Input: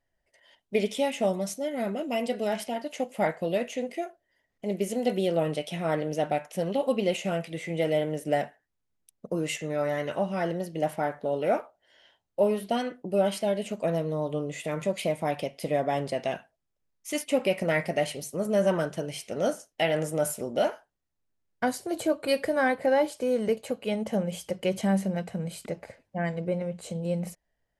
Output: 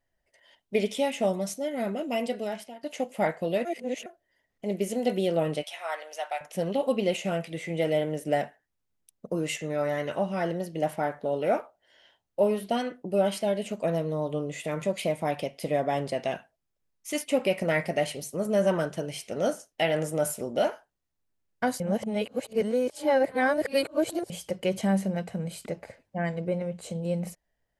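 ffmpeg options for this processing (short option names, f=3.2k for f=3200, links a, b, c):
-filter_complex "[0:a]asettb=1/sr,asplit=3[a][b][c];[a]atrim=end=5.634[d];[b]atrim=start=5.63:end=6.41,asetpts=PTS-STARTPTS,afade=t=in:d=0.004:c=qsin,afade=t=out:st=0.776:d=0.004:c=qsin,highpass=f=740:w=0.5412,highpass=f=740:w=1.3066[e];[c]atrim=start=6.406[f];[d][e]acrossfade=d=0.004:c1=hsin:c2=qsin[g];[g][f]acrossfade=d=0.004:c1=qsin:c2=hsin,asplit=6[h][i][j][k][l][m];[h]atrim=end=2.83,asetpts=PTS-STARTPTS,afade=t=out:st=2.22:d=0.61:silence=0.112202[n];[i]atrim=start=2.83:end=3.652,asetpts=PTS-STARTPTS,afade=t=in:d=0.004:c=hsin:silence=0.112202[o];[j]atrim=start=3.648:end=4.062,asetpts=PTS-STARTPTS,areverse[p];[k]atrim=start=4.058:end=21.802[q];[l]atrim=start=21.798:end=24.302,asetpts=PTS-STARTPTS,areverse[r];[m]atrim=start=24.298[s];[n][o]concat=n=2:v=0:a=1[t];[t][p]acrossfade=d=0.004:c1=hsin:c2=hsin[u];[u][q]acrossfade=d=0.004:c1=hsin:c2=hsin[v];[v][r]acrossfade=d=0.004:c1=hsin:c2=hsin[w];[w][s]acrossfade=d=0.004:c1=hsin:c2=hsin"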